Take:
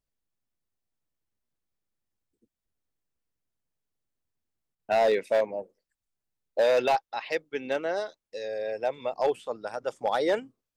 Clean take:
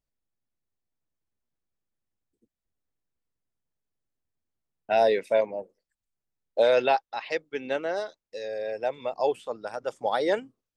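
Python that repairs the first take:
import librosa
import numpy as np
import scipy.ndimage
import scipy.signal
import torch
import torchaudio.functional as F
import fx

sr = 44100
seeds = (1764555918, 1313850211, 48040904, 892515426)

y = fx.fix_declip(x, sr, threshold_db=-17.5)
y = fx.fix_interpolate(y, sr, at_s=(4.75,), length_ms=42.0)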